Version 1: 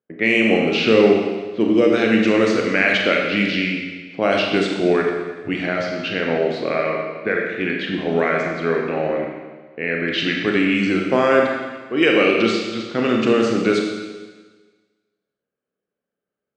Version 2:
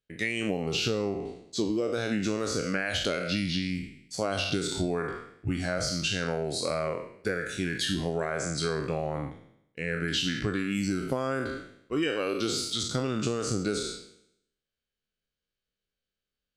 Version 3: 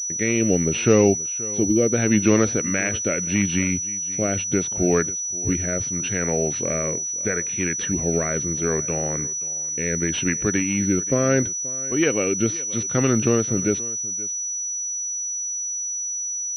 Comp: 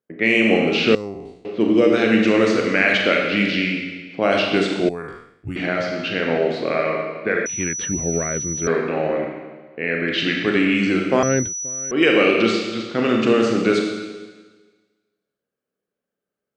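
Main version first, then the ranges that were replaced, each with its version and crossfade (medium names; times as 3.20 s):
1
0.95–1.45 s: from 2
4.89–5.56 s: from 2
7.46–8.67 s: from 3
11.23–11.91 s: from 3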